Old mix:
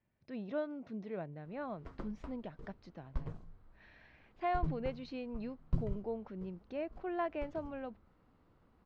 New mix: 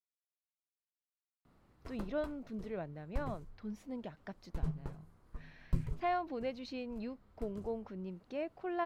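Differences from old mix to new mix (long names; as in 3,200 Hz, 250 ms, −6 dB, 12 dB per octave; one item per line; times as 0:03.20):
speech: entry +1.60 s
master: remove high-frequency loss of the air 140 metres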